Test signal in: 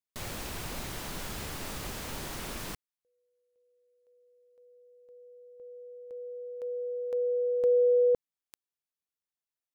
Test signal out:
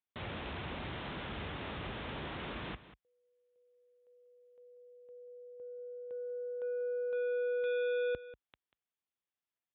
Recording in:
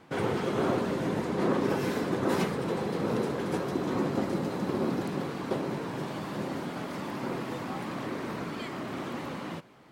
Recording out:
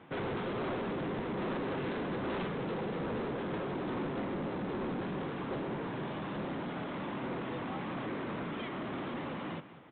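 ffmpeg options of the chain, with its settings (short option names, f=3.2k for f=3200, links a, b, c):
-af "highpass=f=48:w=0.5412,highpass=f=48:w=1.3066,aresample=8000,asoftclip=type=tanh:threshold=-33dB,aresample=44100,aecho=1:1:190:0.178"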